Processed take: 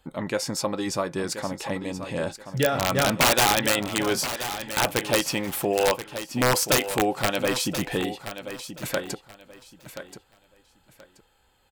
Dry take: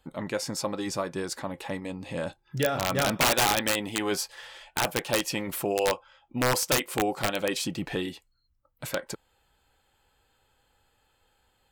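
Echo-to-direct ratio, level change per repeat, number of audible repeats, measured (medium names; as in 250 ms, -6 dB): -11.0 dB, -13.0 dB, 2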